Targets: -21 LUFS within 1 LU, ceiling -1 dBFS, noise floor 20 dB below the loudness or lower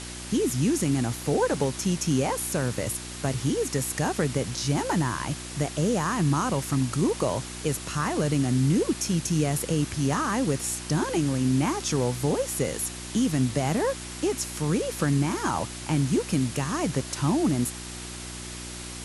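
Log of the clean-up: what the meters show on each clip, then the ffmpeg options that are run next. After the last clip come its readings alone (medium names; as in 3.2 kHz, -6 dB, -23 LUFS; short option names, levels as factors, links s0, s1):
hum 60 Hz; highest harmonic 360 Hz; hum level -39 dBFS; noise floor -38 dBFS; noise floor target -47 dBFS; loudness -26.5 LUFS; peak level -11.5 dBFS; loudness target -21.0 LUFS
-> -af "bandreject=f=60:t=h:w=4,bandreject=f=120:t=h:w=4,bandreject=f=180:t=h:w=4,bandreject=f=240:t=h:w=4,bandreject=f=300:t=h:w=4,bandreject=f=360:t=h:w=4"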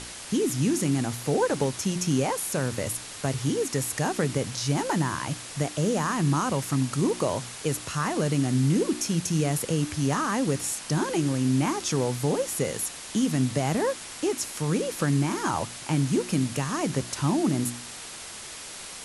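hum not found; noise floor -40 dBFS; noise floor target -47 dBFS
-> -af "afftdn=nr=7:nf=-40"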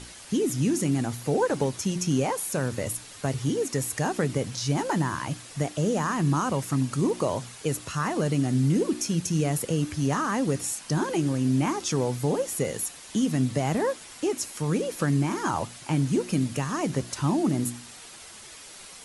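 noise floor -45 dBFS; noise floor target -47 dBFS
-> -af "afftdn=nr=6:nf=-45"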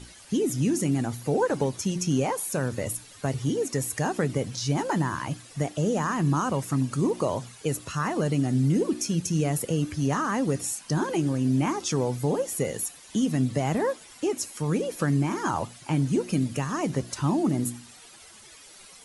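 noise floor -49 dBFS; loudness -27.0 LUFS; peak level -12.5 dBFS; loudness target -21.0 LUFS
-> -af "volume=2"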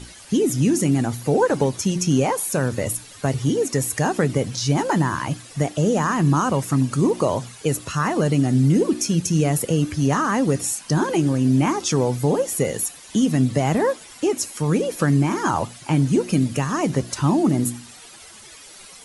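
loudness -21.0 LUFS; peak level -6.5 dBFS; noise floor -43 dBFS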